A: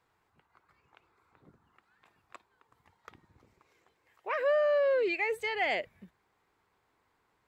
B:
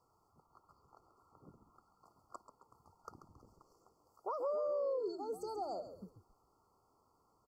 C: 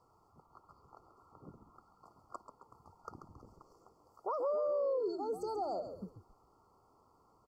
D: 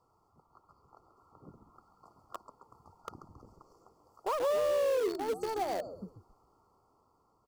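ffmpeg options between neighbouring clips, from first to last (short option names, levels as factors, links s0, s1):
-filter_complex "[0:a]acompressor=threshold=0.0126:ratio=4,asplit=4[s0][s1][s2][s3];[s1]adelay=136,afreqshift=-83,volume=0.299[s4];[s2]adelay=272,afreqshift=-166,volume=0.0955[s5];[s3]adelay=408,afreqshift=-249,volume=0.0305[s6];[s0][s4][s5][s6]amix=inputs=4:normalize=0,afftfilt=real='re*(1-between(b*sr/4096,1400,4300))':imag='im*(1-between(b*sr/4096,1400,4300))':win_size=4096:overlap=0.75,volume=1.12"
-filter_complex "[0:a]asplit=2[s0][s1];[s1]alimiter=level_in=5.62:limit=0.0631:level=0:latency=1,volume=0.178,volume=1[s2];[s0][s2]amix=inputs=2:normalize=0,highshelf=f=5100:g=-8.5"
-filter_complex "[0:a]dynaudnorm=f=380:g=7:m=1.58,asplit=2[s0][s1];[s1]acrusher=bits=4:mix=0:aa=0.000001,volume=0.335[s2];[s0][s2]amix=inputs=2:normalize=0,volume=0.75"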